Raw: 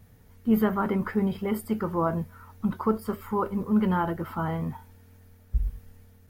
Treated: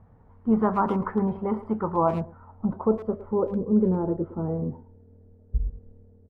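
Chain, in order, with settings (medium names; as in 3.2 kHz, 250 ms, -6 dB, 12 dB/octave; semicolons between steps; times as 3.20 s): low-pass sweep 1 kHz -> 450 Hz, 1.70–3.94 s; speakerphone echo 110 ms, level -13 dB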